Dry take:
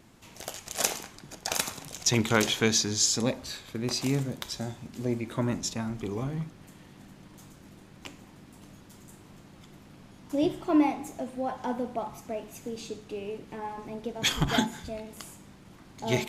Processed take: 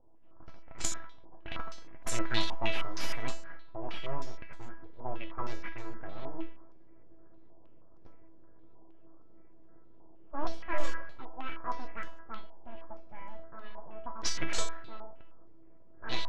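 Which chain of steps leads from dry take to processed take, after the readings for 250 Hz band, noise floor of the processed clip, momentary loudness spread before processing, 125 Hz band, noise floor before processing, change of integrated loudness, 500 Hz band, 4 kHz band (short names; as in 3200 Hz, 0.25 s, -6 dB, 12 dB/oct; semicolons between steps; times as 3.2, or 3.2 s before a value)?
-15.5 dB, -47 dBFS, 16 LU, -12.5 dB, -52 dBFS, -10.0 dB, -11.0 dB, -9.0 dB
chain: full-wave rectifier; low-pass opened by the level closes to 520 Hz, open at -23.5 dBFS; resonator 330 Hz, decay 0.39 s, harmonics all, mix 90%; stepped low-pass 6.4 Hz 870–7300 Hz; gain +6.5 dB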